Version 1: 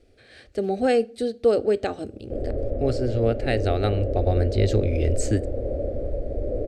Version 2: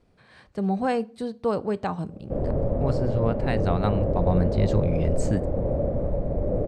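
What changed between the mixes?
speech −7.5 dB
master: remove phaser with its sweep stopped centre 410 Hz, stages 4

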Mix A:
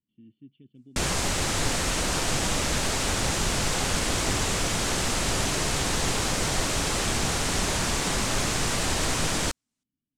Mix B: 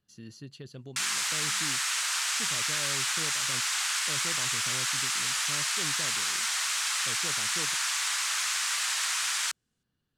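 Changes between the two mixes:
speech: remove formant resonators in series i
background: add high-pass filter 1,200 Hz 24 dB per octave

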